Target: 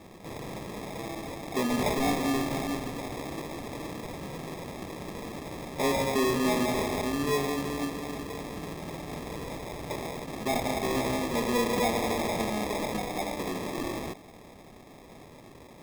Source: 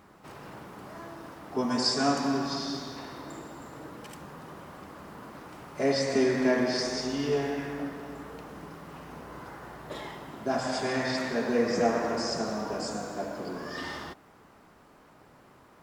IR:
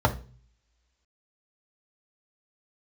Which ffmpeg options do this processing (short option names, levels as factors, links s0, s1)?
-filter_complex "[0:a]asplit=2[s0][s1];[s1]acompressor=threshold=0.01:ratio=6,volume=1.19[s2];[s0][s2]amix=inputs=2:normalize=0,acrusher=samples=30:mix=1:aa=0.000001,asoftclip=type=tanh:threshold=0.1"